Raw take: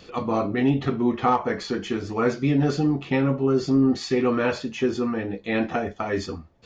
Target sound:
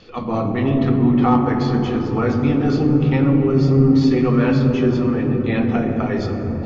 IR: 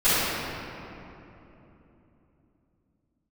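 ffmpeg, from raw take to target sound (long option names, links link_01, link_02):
-filter_complex "[0:a]lowpass=frequency=5600:width=0.5412,lowpass=frequency=5600:width=1.3066,asplit=2[link_01][link_02];[link_02]lowshelf=frequency=180:gain=10.5[link_03];[1:a]atrim=start_sample=2205,asetrate=22491,aresample=44100,lowshelf=frequency=420:gain=7.5[link_04];[link_03][link_04]afir=irnorm=-1:irlink=0,volume=-30dB[link_05];[link_01][link_05]amix=inputs=2:normalize=0"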